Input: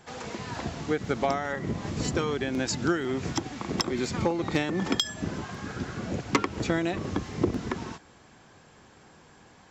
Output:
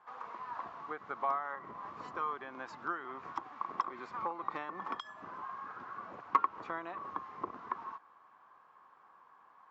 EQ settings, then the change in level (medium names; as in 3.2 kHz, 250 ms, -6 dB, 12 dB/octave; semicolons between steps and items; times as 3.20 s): band-pass filter 1.1 kHz, Q 6.8; distance through air 75 m; +5.5 dB